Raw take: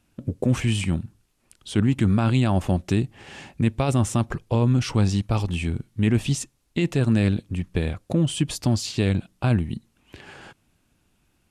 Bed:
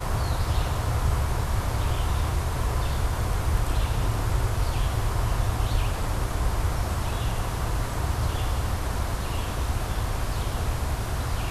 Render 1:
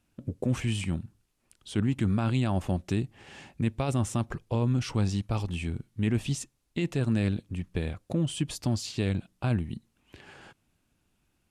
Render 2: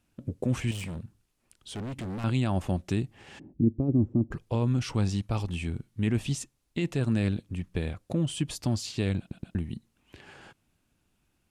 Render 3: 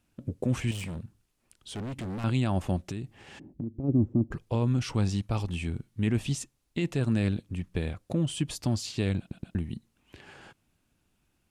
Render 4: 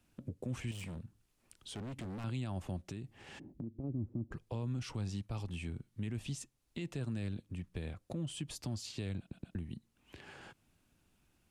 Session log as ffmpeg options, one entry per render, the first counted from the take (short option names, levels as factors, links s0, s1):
-af "volume=0.473"
-filter_complex "[0:a]asettb=1/sr,asplit=3[s0][s1][s2];[s0]atrim=end=0.714[s3];[s1]atrim=start=0.71:end=2.24,asetpts=PTS-STARTPTS,afade=t=in:d=0.004:c=qsin,afade=t=out:st=1.526:d=0.004:c=qsin,volume=44.7,asoftclip=hard,volume=0.0224[s4];[s2]atrim=start=2.236[s5];[s3][s4]acrossfade=d=0.004:c1=hsin:c2=qsin[s6];[s6][s5]acrossfade=d=0.004:c1=qsin:c2=hsin,asplit=3[s7][s8][s9];[s7]afade=t=out:st=3.38:d=0.02[s10];[s8]lowpass=f=310:t=q:w=3,afade=t=in:st=3.38:d=0.02,afade=t=out:st=4.31:d=0.02[s11];[s9]afade=t=in:st=4.31:d=0.02[s12];[s10][s11][s12]amix=inputs=3:normalize=0,asplit=4[s13][s14][s15][s16];[s13]atrim=end=9.312[s17];[s14]atrim=start=9.188:end=9.312[s18];[s15]atrim=start=9.188:end=9.312[s19];[s16]atrim=start=9.548[s20];[s17][s18]acrossfade=d=0.004:c1=hsin:c2=hsin[s21];[s21][s19]acrossfade=d=0.004:c1=hsin:c2=hsin[s22];[s22][s20]acrossfade=d=0.004:c1=hsin:c2=hsin"
-filter_complex "[0:a]asplit=3[s0][s1][s2];[s0]afade=t=out:st=2.82:d=0.02[s3];[s1]acompressor=threshold=0.0282:ratio=6:attack=3.2:release=140:knee=1:detection=peak,afade=t=in:st=2.82:d=0.02,afade=t=out:st=3.83:d=0.02[s4];[s2]afade=t=in:st=3.83:d=0.02[s5];[s3][s4][s5]amix=inputs=3:normalize=0"
-filter_complex "[0:a]acrossover=split=140|3300[s0][s1][s2];[s1]alimiter=limit=0.0631:level=0:latency=1:release=88[s3];[s0][s3][s2]amix=inputs=3:normalize=0,acompressor=threshold=0.002:ratio=1.5"